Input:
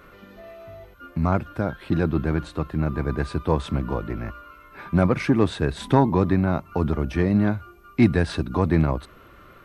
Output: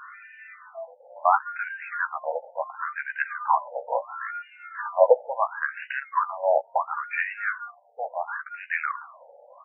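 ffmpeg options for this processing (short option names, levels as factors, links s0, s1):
-filter_complex "[0:a]asplit=2[s0][s1];[s1]adelay=14,volume=0.447[s2];[s0][s2]amix=inputs=2:normalize=0,afftfilt=real='re*between(b*sr/1024,630*pow(2100/630,0.5+0.5*sin(2*PI*0.72*pts/sr))/1.41,630*pow(2100/630,0.5+0.5*sin(2*PI*0.72*pts/sr))*1.41)':imag='im*between(b*sr/1024,630*pow(2100/630,0.5+0.5*sin(2*PI*0.72*pts/sr))/1.41,630*pow(2100/630,0.5+0.5*sin(2*PI*0.72*pts/sr))*1.41)':win_size=1024:overlap=0.75,volume=2.66"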